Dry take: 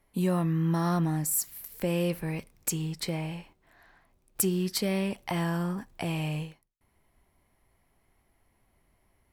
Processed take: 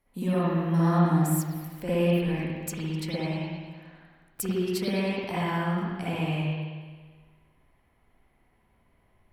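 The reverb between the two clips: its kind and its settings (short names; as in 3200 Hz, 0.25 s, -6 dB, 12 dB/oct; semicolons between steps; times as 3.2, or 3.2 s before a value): spring tank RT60 1.5 s, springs 54/58 ms, chirp 50 ms, DRR -10 dB; gain -6.5 dB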